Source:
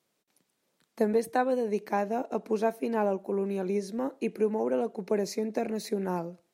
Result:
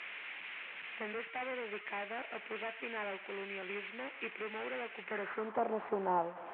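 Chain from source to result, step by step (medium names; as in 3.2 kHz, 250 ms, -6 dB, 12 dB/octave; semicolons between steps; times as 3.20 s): one-bit delta coder 16 kbps, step -41 dBFS; band-pass sweep 2.3 kHz -> 880 Hz, 5.01–5.65 s; trim +8.5 dB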